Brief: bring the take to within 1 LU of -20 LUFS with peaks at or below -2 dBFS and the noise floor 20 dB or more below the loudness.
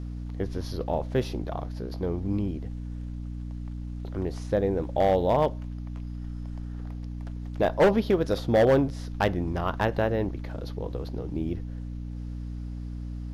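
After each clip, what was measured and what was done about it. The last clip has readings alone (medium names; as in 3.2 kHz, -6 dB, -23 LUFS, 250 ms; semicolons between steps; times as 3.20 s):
clipped samples 0.5%; clipping level -14.5 dBFS; hum 60 Hz; highest harmonic 300 Hz; hum level -33 dBFS; loudness -29.0 LUFS; peak level -14.5 dBFS; loudness target -20.0 LUFS
-> clip repair -14.5 dBFS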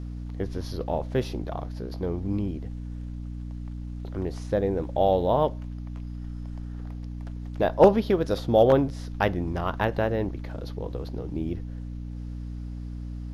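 clipped samples 0.0%; hum 60 Hz; highest harmonic 300 Hz; hum level -33 dBFS
-> de-hum 60 Hz, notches 5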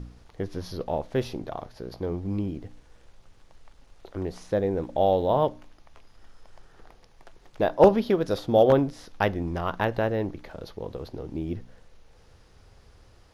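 hum not found; loudness -26.5 LUFS; peak level -5.0 dBFS; loudness target -20.0 LUFS
-> trim +6.5 dB; peak limiter -2 dBFS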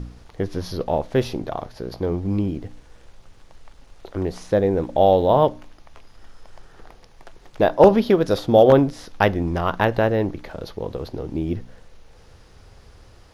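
loudness -20.5 LUFS; peak level -2.0 dBFS; noise floor -50 dBFS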